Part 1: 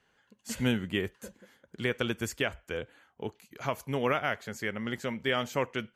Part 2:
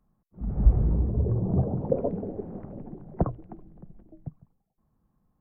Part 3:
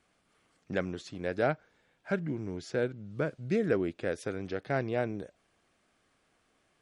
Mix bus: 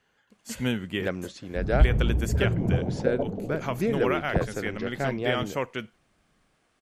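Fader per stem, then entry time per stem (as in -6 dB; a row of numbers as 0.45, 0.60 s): +0.5, -0.5, +2.0 dB; 0.00, 1.15, 0.30 s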